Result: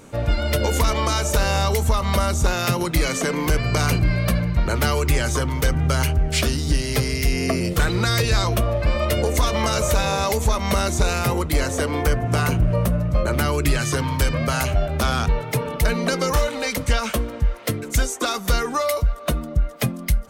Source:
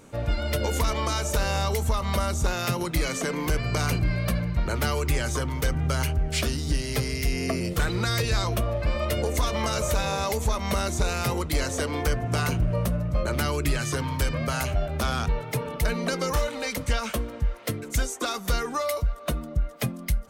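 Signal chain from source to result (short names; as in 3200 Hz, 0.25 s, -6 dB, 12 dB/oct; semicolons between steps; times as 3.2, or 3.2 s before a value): 11.18–13.58 dynamic EQ 4800 Hz, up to -4 dB, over -44 dBFS, Q 0.77; gain +5.5 dB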